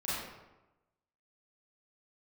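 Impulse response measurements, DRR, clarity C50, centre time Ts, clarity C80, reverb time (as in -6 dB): -11.0 dB, -3.0 dB, 90 ms, 1.0 dB, 1.0 s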